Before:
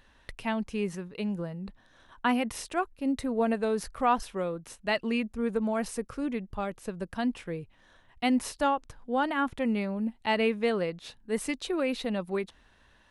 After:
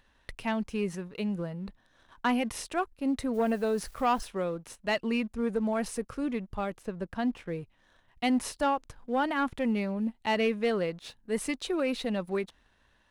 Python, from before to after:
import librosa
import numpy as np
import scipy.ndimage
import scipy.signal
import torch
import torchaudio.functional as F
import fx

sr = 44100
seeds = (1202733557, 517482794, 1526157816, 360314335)

y = fx.quant_dither(x, sr, seeds[0], bits=10, dither='triangular', at=(3.33, 4.27), fade=0.02)
y = fx.high_shelf(y, sr, hz=4300.0, db=-10.5, at=(6.81, 7.5), fade=0.02)
y = fx.leveller(y, sr, passes=1)
y = y * 10.0 ** (-3.5 / 20.0)